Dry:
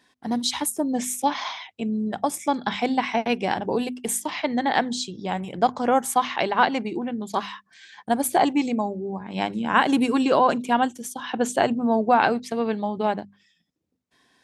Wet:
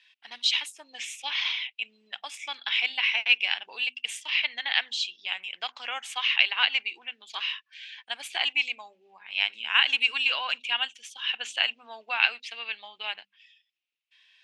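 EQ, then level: resonant high-pass 2.7 kHz, resonance Q 4.7; distance through air 87 m; treble shelf 5.3 kHz -9 dB; +3.0 dB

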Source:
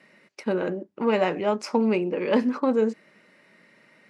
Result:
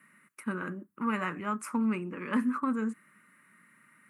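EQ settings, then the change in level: FFT filter 250 Hz 0 dB, 470 Hz -15 dB, 760 Hz -14 dB, 1.2 kHz +8 dB, 5.1 kHz -16 dB, 9.3 kHz +14 dB; -4.5 dB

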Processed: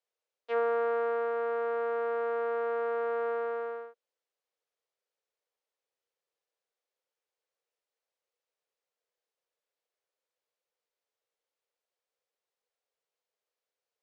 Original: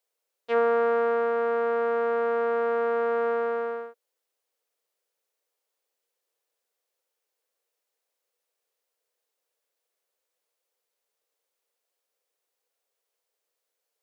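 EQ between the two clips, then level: high-pass 290 Hz 24 dB/octave; distance through air 78 m; -5.5 dB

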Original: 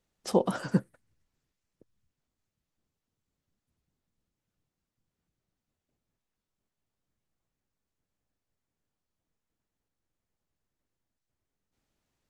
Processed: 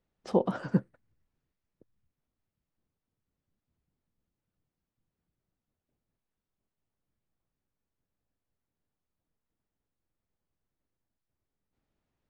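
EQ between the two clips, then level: tape spacing loss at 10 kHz 21 dB; 0.0 dB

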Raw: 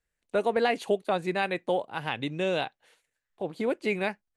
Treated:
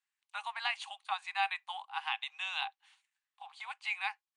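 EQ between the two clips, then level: rippled Chebyshev high-pass 770 Hz, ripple 6 dB; brick-wall FIR low-pass 10 kHz; 0.0 dB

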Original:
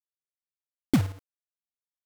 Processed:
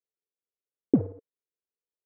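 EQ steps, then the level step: high-pass 220 Hz 6 dB/octave; resonant low-pass 450 Hz, resonance Q 4.9; distance through air 260 m; 0.0 dB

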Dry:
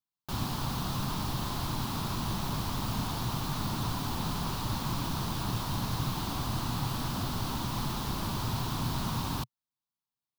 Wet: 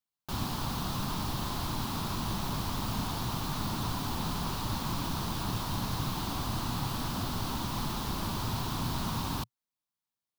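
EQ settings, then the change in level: peaking EQ 130 Hz -4 dB 0.33 oct; 0.0 dB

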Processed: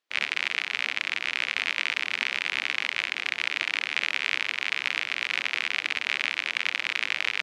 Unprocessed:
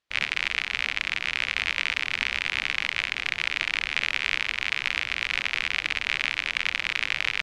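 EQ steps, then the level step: Chebyshev high-pass 280 Hz, order 2; 0.0 dB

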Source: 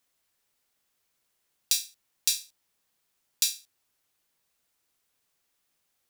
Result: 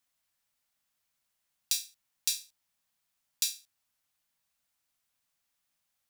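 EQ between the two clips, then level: peaking EQ 400 Hz -14 dB 0.47 oct; -4.5 dB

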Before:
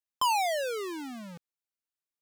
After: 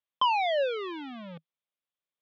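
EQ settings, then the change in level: cabinet simulation 120–3500 Hz, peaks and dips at 160 Hz +6 dB, 560 Hz +8 dB, 1.1 kHz +5 dB, 2.3 kHz +3 dB, 3.4 kHz +10 dB; -1.5 dB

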